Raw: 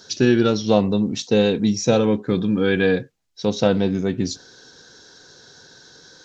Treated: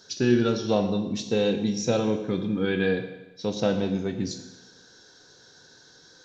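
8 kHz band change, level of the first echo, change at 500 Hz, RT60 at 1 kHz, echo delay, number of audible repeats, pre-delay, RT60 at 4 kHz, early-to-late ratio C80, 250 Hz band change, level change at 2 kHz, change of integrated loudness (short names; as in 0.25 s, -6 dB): n/a, none, -6.0 dB, 1.0 s, none, none, 16 ms, 1.0 s, 11.0 dB, -6.0 dB, -6.0 dB, -6.0 dB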